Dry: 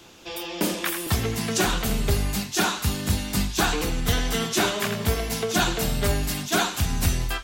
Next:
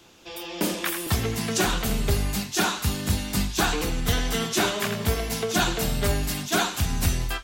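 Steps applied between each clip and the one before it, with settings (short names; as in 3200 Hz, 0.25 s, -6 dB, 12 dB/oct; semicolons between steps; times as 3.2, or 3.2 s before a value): AGC gain up to 4 dB; gain -4.5 dB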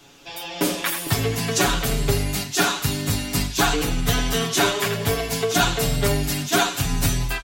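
comb 7.1 ms, depth 96%; gain +1 dB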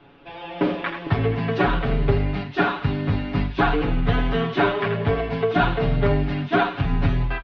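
Gaussian blur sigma 3.4 samples; gain +2 dB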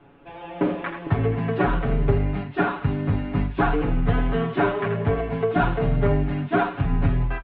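air absorption 440 m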